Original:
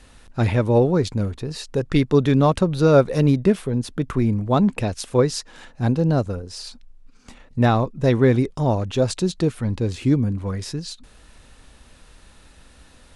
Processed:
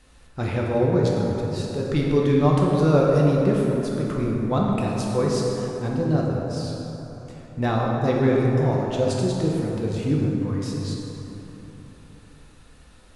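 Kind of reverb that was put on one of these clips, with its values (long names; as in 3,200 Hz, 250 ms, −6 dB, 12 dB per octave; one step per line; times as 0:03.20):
dense smooth reverb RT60 3.7 s, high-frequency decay 0.45×, DRR −3 dB
level −7 dB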